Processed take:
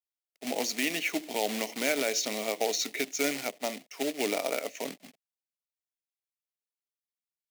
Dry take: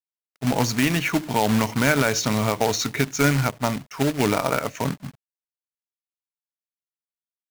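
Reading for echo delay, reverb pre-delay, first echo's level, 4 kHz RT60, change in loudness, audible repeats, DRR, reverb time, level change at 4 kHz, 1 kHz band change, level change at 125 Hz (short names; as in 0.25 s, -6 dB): none, none, none, none, -8.5 dB, none, none, none, -4.5 dB, -12.0 dB, -30.0 dB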